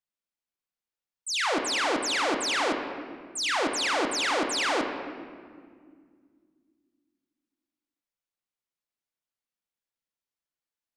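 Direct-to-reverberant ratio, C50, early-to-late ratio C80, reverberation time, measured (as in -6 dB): 3.0 dB, 5.5 dB, 6.5 dB, 2.0 s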